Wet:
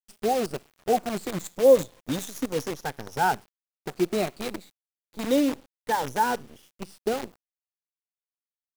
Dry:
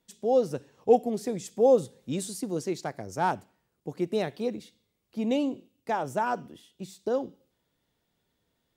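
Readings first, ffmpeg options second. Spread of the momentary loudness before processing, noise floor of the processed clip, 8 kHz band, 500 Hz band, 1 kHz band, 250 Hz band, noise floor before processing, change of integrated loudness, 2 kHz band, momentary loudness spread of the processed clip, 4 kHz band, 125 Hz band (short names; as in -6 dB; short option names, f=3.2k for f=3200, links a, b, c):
17 LU, under -85 dBFS, +4.5 dB, +1.5 dB, +3.5 dB, +1.5 dB, -78 dBFS, +2.0 dB, +6.0 dB, 16 LU, +6.5 dB, +0.5 dB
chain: -af "afftfilt=real='re*pow(10,14/40*sin(2*PI*(1.1*log(max(b,1)*sr/1024/100)/log(2)-(-0.29)*(pts-256)/sr)))':imag='im*pow(10,14/40*sin(2*PI*(1.1*log(max(b,1)*sr/1024/100)/log(2)-(-0.29)*(pts-256)/sr)))':win_size=1024:overlap=0.75,acrusher=bits=6:dc=4:mix=0:aa=0.000001"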